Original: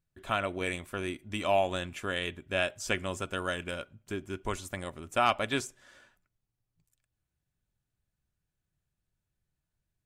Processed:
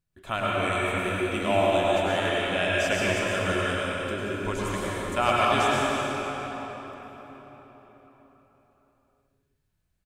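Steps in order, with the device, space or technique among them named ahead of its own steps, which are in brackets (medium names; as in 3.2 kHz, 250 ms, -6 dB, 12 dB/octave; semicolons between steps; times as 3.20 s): cave (delay 175 ms -11.5 dB; reverberation RT60 4.5 s, pre-delay 92 ms, DRR -6 dB)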